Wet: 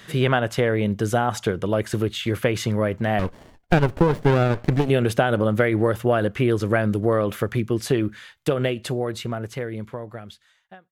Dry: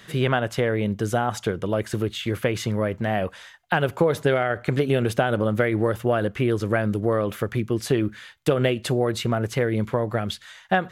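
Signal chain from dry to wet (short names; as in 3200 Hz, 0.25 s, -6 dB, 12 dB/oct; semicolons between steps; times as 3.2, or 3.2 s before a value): ending faded out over 3.49 s; 3.19–4.9 running maximum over 33 samples; gain +2 dB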